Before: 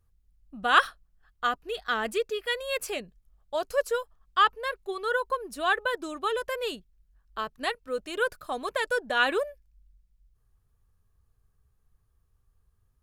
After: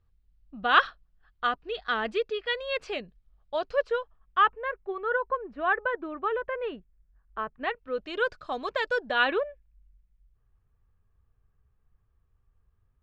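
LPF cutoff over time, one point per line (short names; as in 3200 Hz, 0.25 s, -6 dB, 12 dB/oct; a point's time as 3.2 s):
LPF 24 dB/oct
3.59 s 4400 Hz
4.74 s 2200 Hz
7.5 s 2200 Hz
8.26 s 5300 Hz
9.01 s 5300 Hz
9.48 s 2900 Hz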